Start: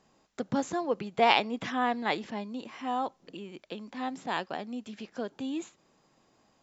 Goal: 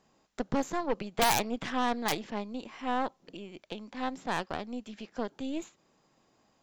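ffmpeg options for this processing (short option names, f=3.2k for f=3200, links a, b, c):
-af "aeval=exprs='(mod(5.62*val(0)+1,2)-1)/5.62':c=same,acontrast=56,aeval=exprs='0.355*(cos(1*acos(clip(val(0)/0.355,-1,1)))-cos(1*PI/2))+0.0562*(cos(6*acos(clip(val(0)/0.355,-1,1)))-cos(6*PI/2))':c=same,volume=-8dB"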